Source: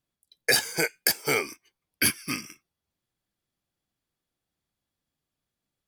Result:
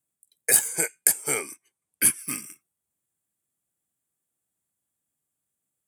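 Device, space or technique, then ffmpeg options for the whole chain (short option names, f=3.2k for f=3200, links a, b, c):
budget condenser microphone: -filter_complex "[0:a]highpass=87,highshelf=f=6.4k:t=q:w=3:g=9.5,asettb=1/sr,asplit=3[a][b][c];[a]atrim=end=0.684[d];[b]atrim=start=0.68:end=2.19,asetpts=PTS-STARTPTS,afade=t=in:d=0.004:c=qsin,afade=t=out:st=1.506:d=0.004:c=qsin,lowpass=11k[e];[c]atrim=start=2.186[f];[d][e]acrossfade=d=0.004:c1=hsin:c2=qsin[g];[g][f]acrossfade=d=0.004:c1=qsin:c2=hsin,volume=-4dB"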